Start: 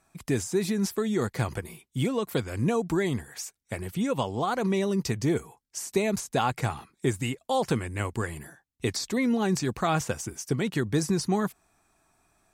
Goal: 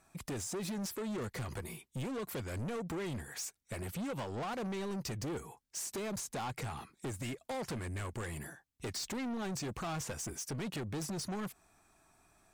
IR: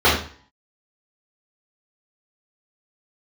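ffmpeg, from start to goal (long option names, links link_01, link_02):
-af "acompressor=threshold=-28dB:ratio=4,asoftclip=type=tanh:threshold=-35.5dB"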